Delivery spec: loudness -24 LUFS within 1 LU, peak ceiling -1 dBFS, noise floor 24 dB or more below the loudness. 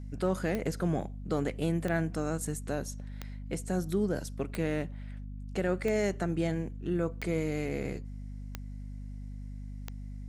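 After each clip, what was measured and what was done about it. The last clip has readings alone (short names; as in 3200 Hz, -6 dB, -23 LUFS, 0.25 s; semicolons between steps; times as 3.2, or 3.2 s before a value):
clicks 8; hum 50 Hz; harmonics up to 250 Hz; hum level -38 dBFS; loudness -33.0 LUFS; peak -17.5 dBFS; loudness target -24.0 LUFS
-> de-click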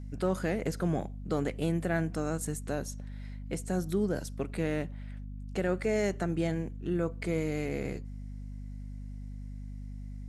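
clicks 0; hum 50 Hz; harmonics up to 250 Hz; hum level -38 dBFS
-> de-hum 50 Hz, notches 5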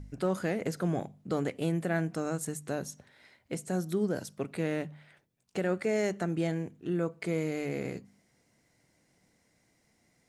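hum none; loudness -33.0 LUFS; peak -18.0 dBFS; loudness target -24.0 LUFS
-> gain +9 dB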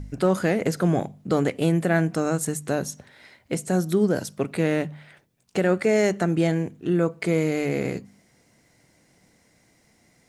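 loudness -24.0 LUFS; peak -9.0 dBFS; noise floor -62 dBFS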